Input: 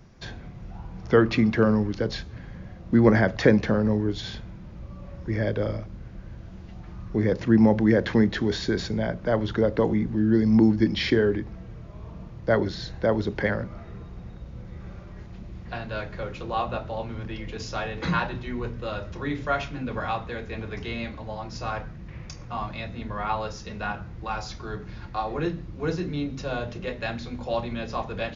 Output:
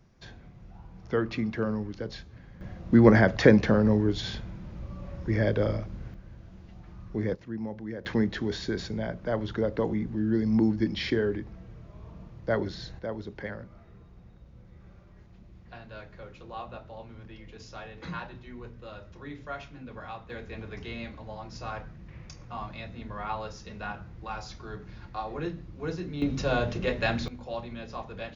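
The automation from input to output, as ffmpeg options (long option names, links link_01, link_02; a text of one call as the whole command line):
ffmpeg -i in.wav -af "asetnsamples=nb_out_samples=441:pad=0,asendcmd='2.61 volume volume 0.5dB;6.14 volume volume -6.5dB;7.35 volume volume -17.5dB;8.05 volume volume -5.5dB;12.99 volume volume -12dB;20.3 volume volume -6dB;26.22 volume volume 3.5dB;27.28 volume volume -8dB',volume=-9dB" out.wav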